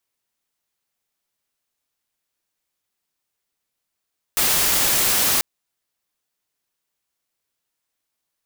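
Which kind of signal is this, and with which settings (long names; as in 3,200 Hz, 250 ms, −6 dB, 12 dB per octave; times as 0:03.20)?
noise white, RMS −18.5 dBFS 1.04 s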